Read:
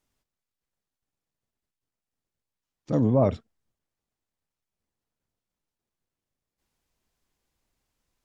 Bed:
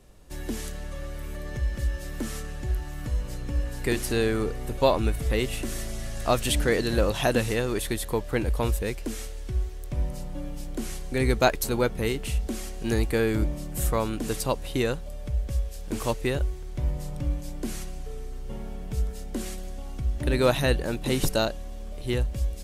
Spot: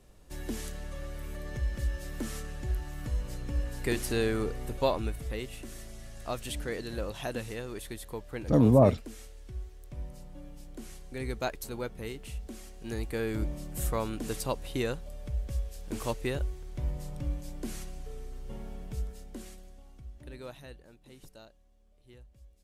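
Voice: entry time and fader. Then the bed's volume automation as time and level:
5.60 s, +1.0 dB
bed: 4.63 s -4 dB
5.48 s -12 dB
12.8 s -12 dB
13.54 s -5.5 dB
18.8 s -5.5 dB
20.99 s -28 dB

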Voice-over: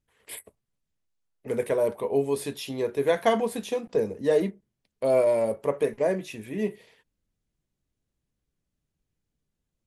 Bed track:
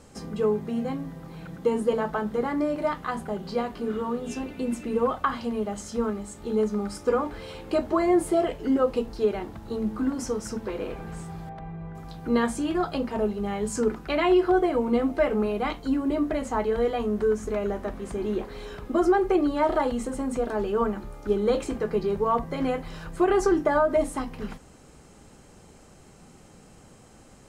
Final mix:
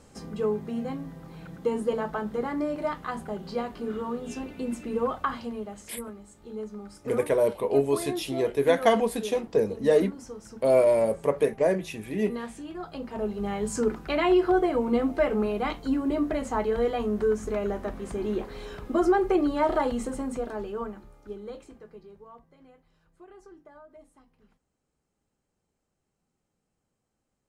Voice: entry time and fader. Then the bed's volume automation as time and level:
5.60 s, +1.5 dB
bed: 5.32 s -3 dB
5.96 s -12 dB
12.78 s -12 dB
13.44 s -1 dB
20.08 s -1 dB
22.63 s -29 dB

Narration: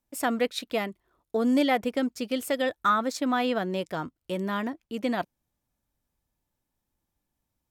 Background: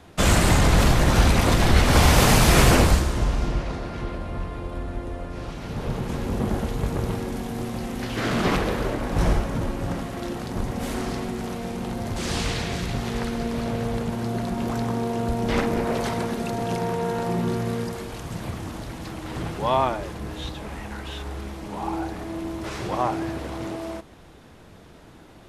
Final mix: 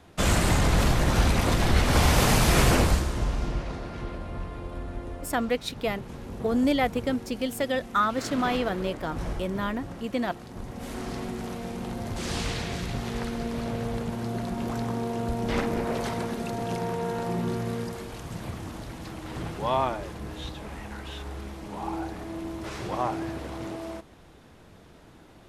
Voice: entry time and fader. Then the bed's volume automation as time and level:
5.10 s, -0.5 dB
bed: 5.12 s -4.5 dB
5.71 s -11.5 dB
10.54 s -11.5 dB
11.24 s -4 dB

